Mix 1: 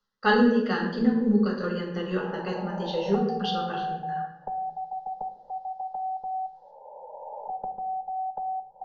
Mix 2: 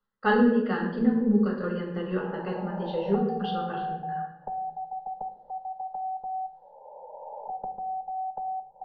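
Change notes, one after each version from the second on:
master: add distance through air 360 m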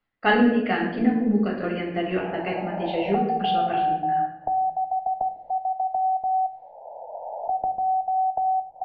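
master: remove static phaser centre 460 Hz, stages 8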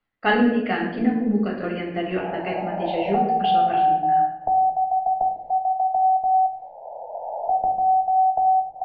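background: send +8.0 dB

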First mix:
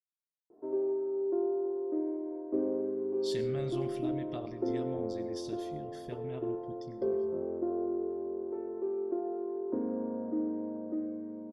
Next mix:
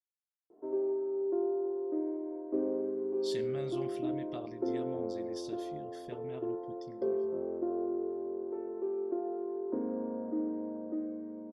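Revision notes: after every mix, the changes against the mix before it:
speech: send -11.0 dB; master: add bass shelf 110 Hz -10 dB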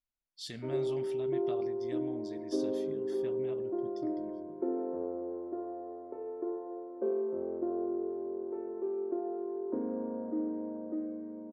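speech: entry -2.85 s

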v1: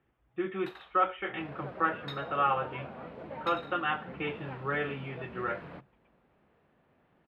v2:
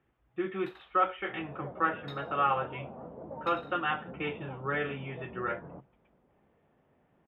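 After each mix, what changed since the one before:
first sound -5.0 dB; second sound: add low-pass 1 kHz 24 dB/octave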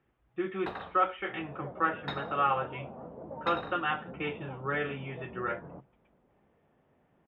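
first sound: remove pre-emphasis filter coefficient 0.97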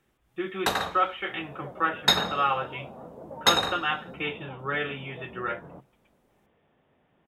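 first sound +10.0 dB; master: remove distance through air 450 m

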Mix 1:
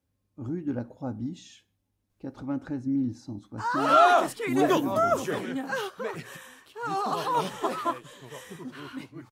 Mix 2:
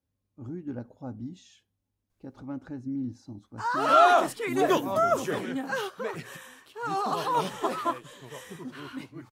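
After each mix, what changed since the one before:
speech -5.0 dB; reverb: off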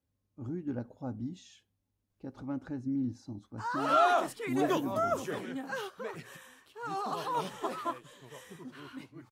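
background -6.5 dB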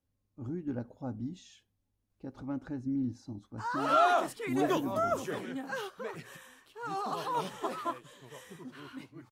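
speech: remove high-pass 49 Hz

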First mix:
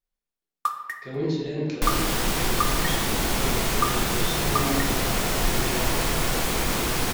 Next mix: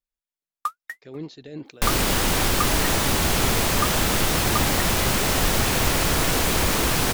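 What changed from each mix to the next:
second sound +5.5 dB; reverb: off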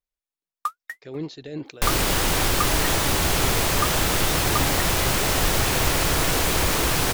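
speech +4.0 dB; master: add peaking EQ 220 Hz -6.5 dB 0.35 oct

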